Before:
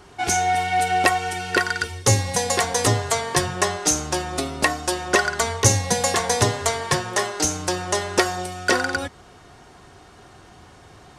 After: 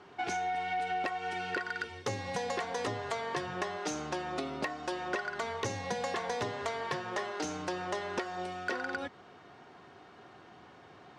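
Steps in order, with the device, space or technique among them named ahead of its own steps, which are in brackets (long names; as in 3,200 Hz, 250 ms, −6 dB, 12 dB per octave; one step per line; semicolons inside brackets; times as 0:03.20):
AM radio (band-pass filter 170–3,400 Hz; downward compressor 6 to 1, threshold −25 dBFS, peak gain reduction 12 dB; soft clipping −16.5 dBFS, distortion −23 dB)
level −5.5 dB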